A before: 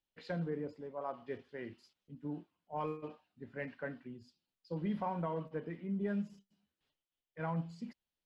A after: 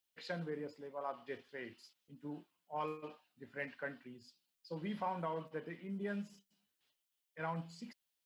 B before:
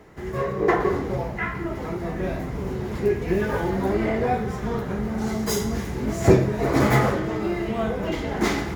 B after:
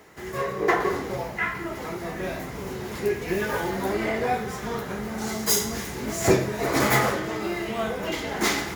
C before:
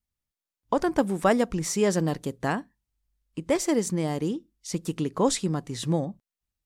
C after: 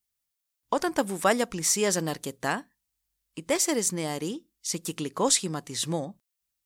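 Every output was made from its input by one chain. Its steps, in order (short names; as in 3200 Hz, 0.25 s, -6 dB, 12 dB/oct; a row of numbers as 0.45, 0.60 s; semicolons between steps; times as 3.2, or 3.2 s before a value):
tilt +2.5 dB/oct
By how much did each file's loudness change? -3.0, -2.0, -0.5 LU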